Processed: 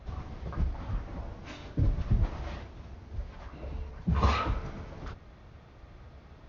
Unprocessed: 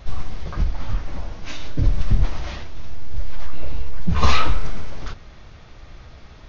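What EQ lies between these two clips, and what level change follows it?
high-pass filter 48 Hz
high-shelf EQ 2,100 Hz −11.5 dB
−5.0 dB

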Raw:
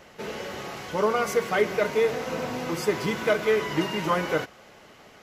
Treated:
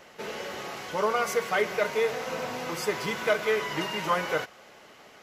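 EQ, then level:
dynamic equaliser 300 Hz, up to −6 dB, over −38 dBFS, Q 1.6
low-shelf EQ 190 Hz −10 dB
0.0 dB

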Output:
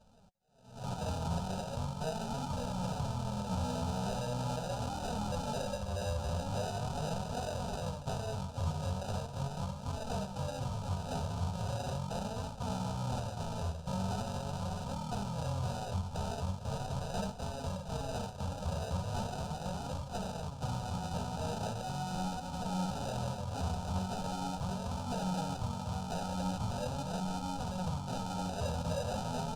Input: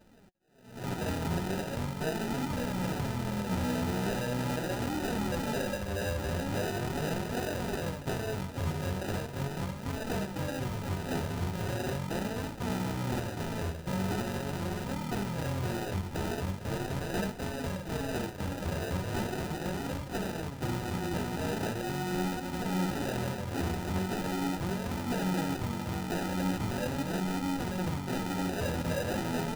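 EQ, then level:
high-frequency loss of the air 78 metres
high-shelf EQ 4,700 Hz +7 dB
phaser with its sweep stopped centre 810 Hz, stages 4
0.0 dB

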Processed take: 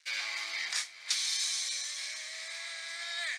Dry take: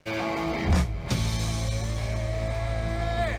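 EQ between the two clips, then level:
high-pass with resonance 1,900 Hz, resonance Q 2.4
flat-topped bell 6,000 Hz +12.5 dB
−7.5 dB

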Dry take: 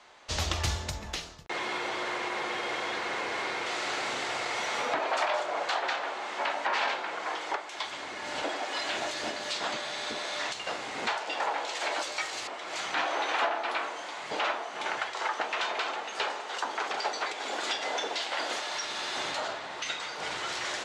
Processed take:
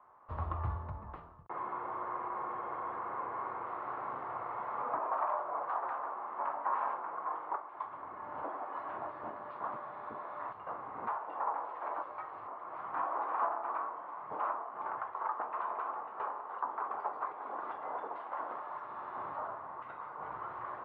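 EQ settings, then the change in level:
transistor ladder low-pass 1,200 Hz, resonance 70%
parametric band 100 Hz +9 dB 1.4 octaves
0.0 dB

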